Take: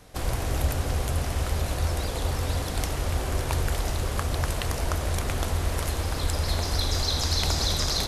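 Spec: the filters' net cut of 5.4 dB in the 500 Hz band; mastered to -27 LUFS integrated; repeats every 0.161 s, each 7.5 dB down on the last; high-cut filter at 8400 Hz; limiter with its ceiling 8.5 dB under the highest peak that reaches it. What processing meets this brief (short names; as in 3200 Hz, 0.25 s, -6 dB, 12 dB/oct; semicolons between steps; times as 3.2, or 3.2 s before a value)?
LPF 8400 Hz; bell 500 Hz -7 dB; limiter -17.5 dBFS; feedback echo 0.161 s, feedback 42%, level -7.5 dB; gain +2 dB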